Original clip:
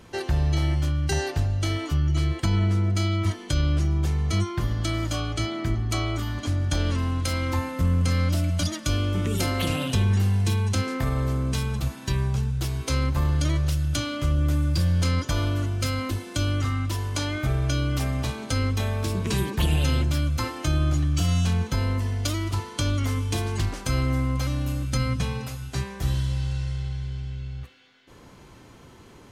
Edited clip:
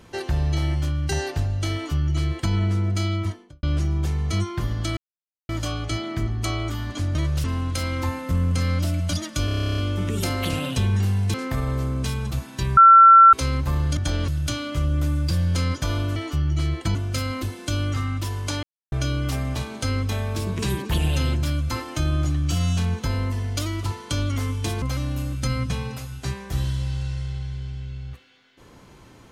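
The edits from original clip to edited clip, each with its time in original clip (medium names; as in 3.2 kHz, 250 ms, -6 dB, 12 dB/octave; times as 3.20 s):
1.74–2.53 s: copy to 15.63 s
3.11–3.63 s: studio fade out
4.97 s: insert silence 0.52 s
6.63–6.94 s: swap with 13.46–13.75 s
8.95 s: stutter 0.03 s, 12 plays
10.51–10.83 s: delete
12.26–12.82 s: bleep 1.35 kHz -6.5 dBFS
17.31–17.60 s: mute
23.50–24.32 s: delete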